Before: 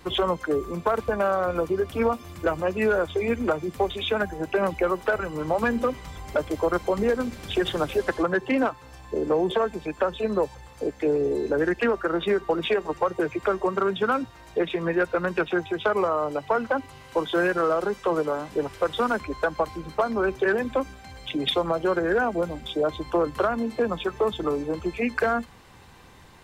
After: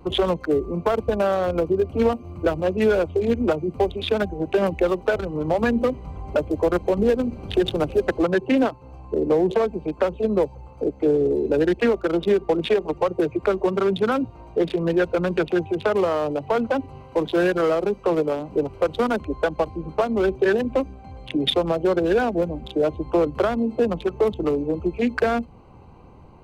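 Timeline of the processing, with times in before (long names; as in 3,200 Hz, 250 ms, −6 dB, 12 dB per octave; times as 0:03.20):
0:13.68–0:17.49: transient designer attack −1 dB, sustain +3 dB
whole clip: adaptive Wiener filter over 25 samples; dynamic equaliser 1,200 Hz, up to −6 dB, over −40 dBFS, Q 0.99; level +5.5 dB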